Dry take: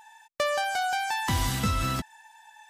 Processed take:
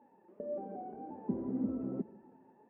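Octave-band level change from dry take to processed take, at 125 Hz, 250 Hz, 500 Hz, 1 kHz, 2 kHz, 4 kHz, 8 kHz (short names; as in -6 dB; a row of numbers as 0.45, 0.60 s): -17.0 dB, -0.5 dB, -8.0 dB, -20.0 dB, under -40 dB, under -40 dB, under -40 dB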